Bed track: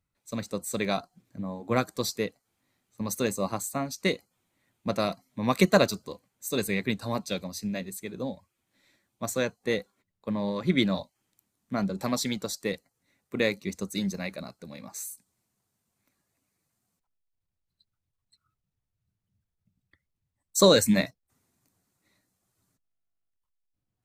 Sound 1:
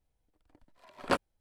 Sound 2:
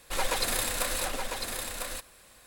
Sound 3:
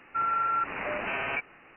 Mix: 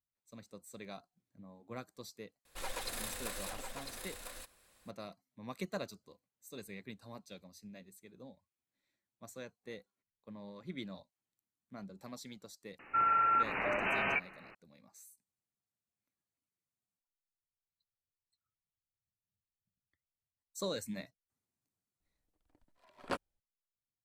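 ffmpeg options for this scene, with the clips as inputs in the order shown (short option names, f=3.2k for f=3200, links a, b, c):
-filter_complex "[0:a]volume=-19.5dB[a];[2:a]atrim=end=2.46,asetpts=PTS-STARTPTS,volume=-12dB,afade=t=in:d=0.004:c=hsin,afade=t=out:st=2.456:d=0.004:c=hsin,adelay=2450[b];[3:a]atrim=end=1.76,asetpts=PTS-STARTPTS,volume=-1.5dB,afade=t=in:d=0.004:c=hsin,afade=t=out:st=1.756:d=0.004:c=hsin,adelay=12790[c];[1:a]atrim=end=1.4,asetpts=PTS-STARTPTS,volume=-9dB,afade=t=in:d=0.004:c=hsin,afade=t=out:st=1.396:d=0.004:c=hsin,adelay=22000[d];[a][b][c][d]amix=inputs=4:normalize=0"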